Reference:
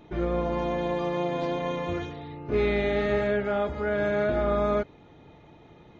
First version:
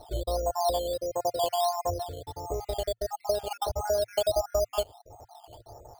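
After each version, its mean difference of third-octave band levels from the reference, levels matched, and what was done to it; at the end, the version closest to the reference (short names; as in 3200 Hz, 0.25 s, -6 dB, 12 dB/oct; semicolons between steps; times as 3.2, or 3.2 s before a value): 16.0 dB: random spectral dropouts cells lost 52%; compressor, threshold -32 dBFS, peak gain reduction 11 dB; EQ curve 110 Hz 0 dB, 160 Hz -22 dB, 290 Hz -16 dB, 700 Hz +7 dB, 2400 Hz -27 dB; decimation with a swept rate 9×, swing 60% 1.5 Hz; gain +7.5 dB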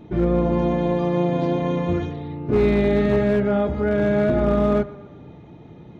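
3.5 dB: bell 150 Hz +13 dB 3 oct; notches 50/100/150 Hz; hard clip -12 dBFS, distortion -23 dB; tape echo 0.121 s, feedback 55%, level -16.5 dB, low-pass 4300 Hz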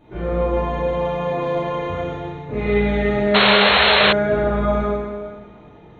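5.0 dB: bell 5100 Hz -10.5 dB 0.36 oct; plate-style reverb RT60 1.7 s, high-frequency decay 0.95×, DRR -8.5 dB; painted sound noise, 3.34–4.13, 380–4300 Hz -11 dBFS; high shelf 3900 Hz -5.5 dB; gain -2.5 dB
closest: second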